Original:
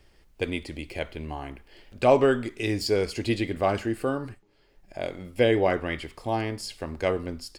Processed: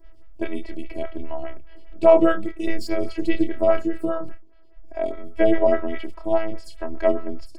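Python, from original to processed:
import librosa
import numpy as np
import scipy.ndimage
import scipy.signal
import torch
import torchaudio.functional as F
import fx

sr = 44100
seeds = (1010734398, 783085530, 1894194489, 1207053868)

p1 = fx.robotise(x, sr, hz=326.0)
p2 = fx.low_shelf(p1, sr, hz=92.0, db=9.5)
p3 = fx.doubler(p2, sr, ms=29.0, db=-6.0)
p4 = fx.level_steps(p3, sr, step_db=12)
p5 = p3 + F.gain(torch.from_numpy(p4), -2.5).numpy()
p6 = fx.high_shelf(p5, sr, hz=3200.0, db=-12.0)
p7 = fx.stagger_phaser(p6, sr, hz=4.9)
y = F.gain(torch.from_numpy(p7), 5.0).numpy()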